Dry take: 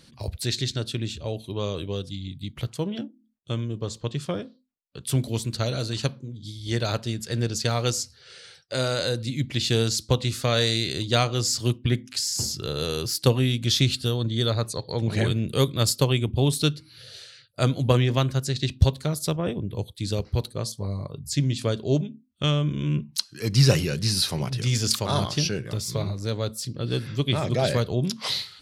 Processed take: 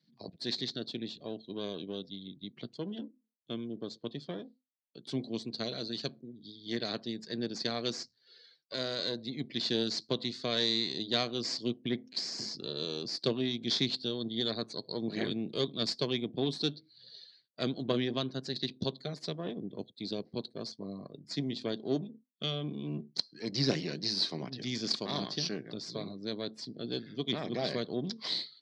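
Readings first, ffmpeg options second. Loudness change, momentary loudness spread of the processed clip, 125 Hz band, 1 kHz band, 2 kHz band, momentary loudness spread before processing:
-9.5 dB, 12 LU, -18.5 dB, -11.5 dB, -10.0 dB, 11 LU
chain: -af "aeval=exprs='if(lt(val(0),0),0.251*val(0),val(0))':c=same,afftdn=nr=15:nf=-48,highpass=f=180:w=0.5412,highpass=f=180:w=1.3066,equalizer=f=540:t=q:w=4:g=-6,equalizer=f=870:t=q:w=4:g=-8,equalizer=f=1.3k:t=q:w=4:g=-9,equalizer=f=2.7k:t=q:w=4:g=-8,equalizer=f=4.4k:t=q:w=4:g=5,lowpass=f=5.1k:w=0.5412,lowpass=f=5.1k:w=1.3066,volume=-3.5dB"

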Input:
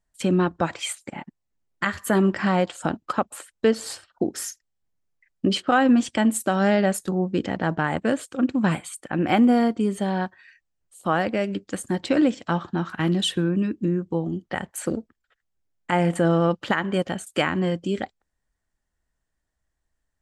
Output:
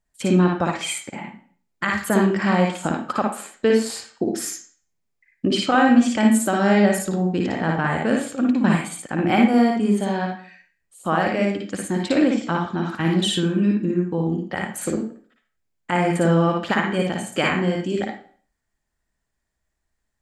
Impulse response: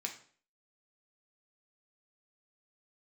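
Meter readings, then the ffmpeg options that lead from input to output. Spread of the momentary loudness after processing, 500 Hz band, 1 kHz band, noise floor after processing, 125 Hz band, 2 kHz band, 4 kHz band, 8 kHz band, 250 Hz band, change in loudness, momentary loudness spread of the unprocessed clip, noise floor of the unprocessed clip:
11 LU, +2.0 dB, +2.5 dB, -77 dBFS, +3.0 dB, +3.5 dB, +2.5 dB, +3.0 dB, +3.0 dB, +3.0 dB, 11 LU, -79 dBFS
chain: -filter_complex "[0:a]asplit=2[a][b];[1:a]atrim=start_sample=2205,adelay=56[c];[b][c]afir=irnorm=-1:irlink=0,volume=0.5dB[d];[a][d]amix=inputs=2:normalize=0"

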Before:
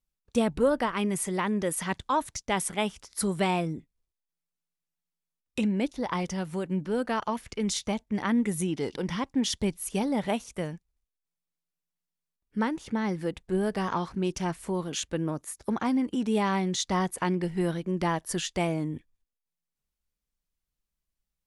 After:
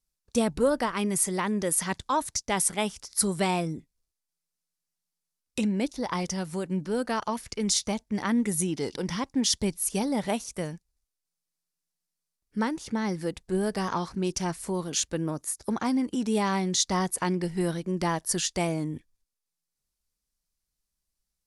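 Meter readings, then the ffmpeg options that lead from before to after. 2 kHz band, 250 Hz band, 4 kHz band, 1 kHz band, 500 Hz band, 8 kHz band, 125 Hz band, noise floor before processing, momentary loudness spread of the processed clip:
0.0 dB, 0.0 dB, +3.5 dB, 0.0 dB, 0.0 dB, +7.0 dB, 0.0 dB, under -85 dBFS, 7 LU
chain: -af "lowpass=10k,aexciter=amount=3.6:drive=1.1:freq=4.3k"

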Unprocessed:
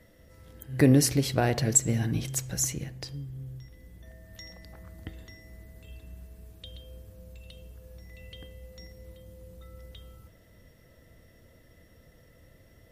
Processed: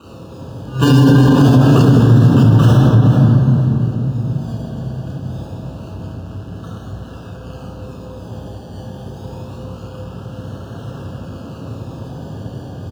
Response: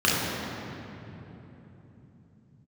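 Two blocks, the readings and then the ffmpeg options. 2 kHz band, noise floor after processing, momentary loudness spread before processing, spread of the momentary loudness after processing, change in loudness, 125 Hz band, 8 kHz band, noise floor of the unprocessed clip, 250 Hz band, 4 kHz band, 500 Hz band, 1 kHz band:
+11.0 dB, -33 dBFS, 24 LU, 22 LU, +14.5 dB, +20.0 dB, n/a, -58 dBFS, +16.5 dB, +9.5 dB, +12.5 dB, +16.0 dB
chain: -filter_complex "[0:a]aeval=exprs='val(0)+0.5*0.0224*sgn(val(0))':c=same,aecho=1:1:7.4:0.41,acrusher=samples=26:mix=1:aa=0.000001:lfo=1:lforange=15.6:lforate=0.26,agate=range=-9dB:threshold=-28dB:ratio=16:detection=peak,asuperstop=centerf=2100:order=8:qfactor=2.3,aecho=1:1:460:0.188[a];[1:a]atrim=start_sample=2205[b];[a][b]afir=irnorm=-1:irlink=0,alimiter=level_in=-4dB:limit=-1dB:release=50:level=0:latency=1,volume=-1dB"

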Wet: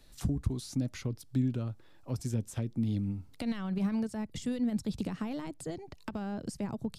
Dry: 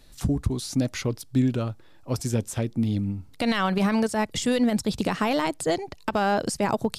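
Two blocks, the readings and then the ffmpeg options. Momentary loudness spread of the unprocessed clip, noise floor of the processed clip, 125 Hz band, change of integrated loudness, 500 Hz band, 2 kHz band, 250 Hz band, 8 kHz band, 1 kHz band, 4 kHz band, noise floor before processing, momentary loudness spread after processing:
7 LU, -55 dBFS, -6.0 dB, -9.0 dB, -15.0 dB, -18.0 dB, -7.5 dB, -13.0 dB, -19.0 dB, -15.5 dB, -50 dBFS, 8 LU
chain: -filter_complex "[0:a]acrossover=split=280[a][b];[b]acompressor=threshold=-36dB:ratio=10[c];[a][c]amix=inputs=2:normalize=0,volume=-5.5dB"

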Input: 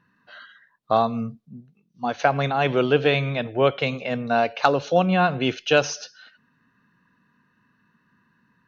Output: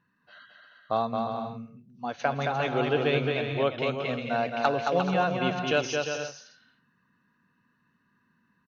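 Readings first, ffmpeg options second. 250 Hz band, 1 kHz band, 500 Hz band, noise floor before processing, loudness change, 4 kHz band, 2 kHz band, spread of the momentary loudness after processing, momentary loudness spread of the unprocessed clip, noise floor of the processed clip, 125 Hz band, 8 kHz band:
-5.5 dB, -5.5 dB, -5.5 dB, -67 dBFS, -6.0 dB, -5.5 dB, -5.0 dB, 11 LU, 11 LU, -71 dBFS, -6.0 dB, n/a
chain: -af "aecho=1:1:220|352|431.2|478.7|507.2:0.631|0.398|0.251|0.158|0.1,volume=-7.5dB"

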